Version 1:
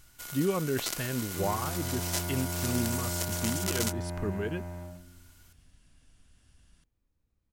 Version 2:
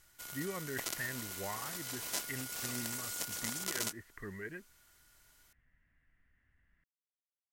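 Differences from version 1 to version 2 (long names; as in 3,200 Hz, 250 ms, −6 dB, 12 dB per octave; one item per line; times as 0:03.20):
speech: add transistor ladder low-pass 2,000 Hz, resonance 85%
first sound −4.5 dB
second sound: muted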